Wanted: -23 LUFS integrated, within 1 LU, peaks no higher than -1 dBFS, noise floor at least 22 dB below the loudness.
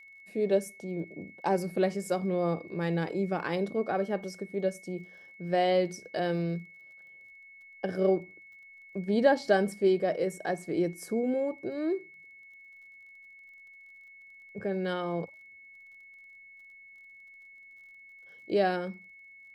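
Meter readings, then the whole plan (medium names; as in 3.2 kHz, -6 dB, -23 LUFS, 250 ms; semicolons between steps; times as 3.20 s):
tick rate 26 per s; steady tone 2.2 kHz; tone level -50 dBFS; loudness -30.5 LUFS; peak level -10.5 dBFS; loudness target -23.0 LUFS
-> de-click; band-stop 2.2 kHz, Q 30; trim +7.5 dB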